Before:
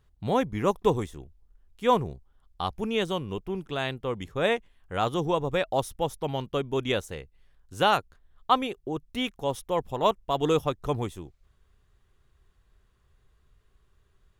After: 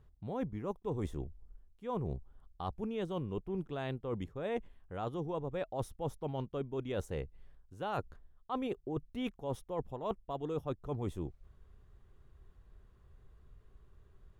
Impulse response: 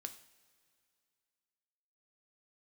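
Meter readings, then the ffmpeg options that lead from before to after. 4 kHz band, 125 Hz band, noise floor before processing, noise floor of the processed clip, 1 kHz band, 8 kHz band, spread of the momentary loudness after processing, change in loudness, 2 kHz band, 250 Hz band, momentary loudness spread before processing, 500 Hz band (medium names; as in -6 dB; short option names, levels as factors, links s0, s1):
-19.0 dB, -6.0 dB, -67 dBFS, -65 dBFS, -14.5 dB, -15.5 dB, 5 LU, -11.5 dB, -16.5 dB, -8.0 dB, 11 LU, -11.0 dB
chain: -af "tiltshelf=f=1400:g=6.5,areverse,acompressor=threshold=0.0251:ratio=16,areverse,volume=0.841"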